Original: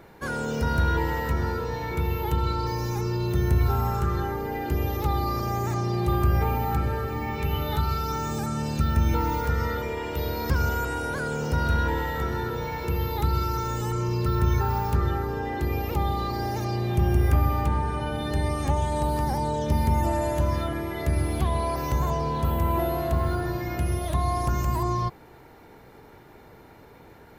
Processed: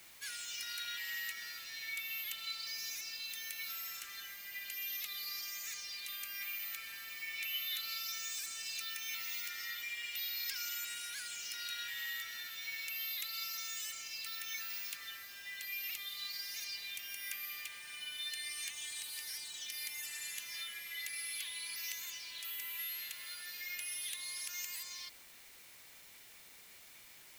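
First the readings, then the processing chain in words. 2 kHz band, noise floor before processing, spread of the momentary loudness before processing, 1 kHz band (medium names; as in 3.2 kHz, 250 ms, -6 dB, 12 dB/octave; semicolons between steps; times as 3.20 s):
-6.5 dB, -50 dBFS, 6 LU, -28.5 dB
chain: steep high-pass 2.1 kHz 36 dB/octave; in parallel at -9 dB: word length cut 8-bit, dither triangular; on the sum: trim -1.5 dB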